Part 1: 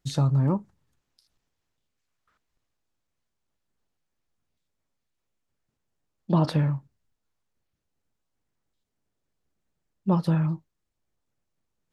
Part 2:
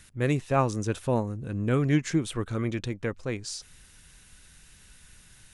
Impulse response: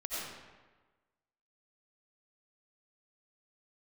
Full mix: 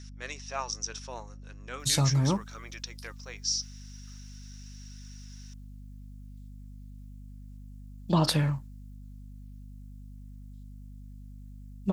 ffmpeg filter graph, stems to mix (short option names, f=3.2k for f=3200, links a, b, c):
-filter_complex "[0:a]crystalizer=i=7:c=0,adelay=1800,volume=-3dB[a];[1:a]highpass=880,flanger=delay=0.5:depth=5.5:regen=83:speed=0.4:shape=triangular,lowpass=f=5.6k:t=q:w=11,volume=-1.5dB[b];[a][b]amix=inputs=2:normalize=0,aeval=exprs='val(0)+0.00631*(sin(2*PI*50*n/s)+sin(2*PI*2*50*n/s)/2+sin(2*PI*3*50*n/s)/3+sin(2*PI*4*50*n/s)/4+sin(2*PI*5*50*n/s)/5)':c=same"